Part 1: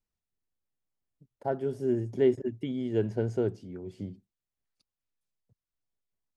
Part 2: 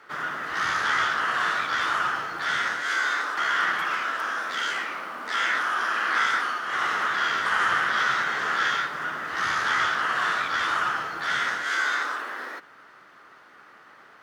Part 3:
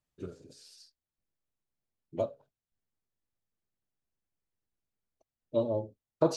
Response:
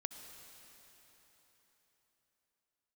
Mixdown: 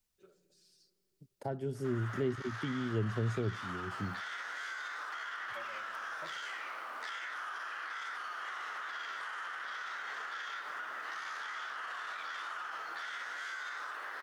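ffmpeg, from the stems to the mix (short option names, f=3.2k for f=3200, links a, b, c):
-filter_complex "[0:a]highshelf=f=2.2k:g=9.5,volume=1dB[a];[1:a]alimiter=limit=-21dB:level=0:latency=1,adelay=1750,volume=-4dB[b];[2:a]aecho=1:1:5.3:0.96,volume=-17dB,asplit=2[c][d];[d]volume=-8.5dB[e];[b][c]amix=inputs=2:normalize=0,highpass=510,acompressor=threshold=-32dB:ratio=6,volume=0dB[f];[3:a]atrim=start_sample=2205[g];[e][g]afir=irnorm=-1:irlink=0[h];[a][f][h]amix=inputs=3:normalize=0,acrossover=split=190[i][j];[j]acompressor=threshold=-41dB:ratio=2.5[k];[i][k]amix=inputs=2:normalize=0"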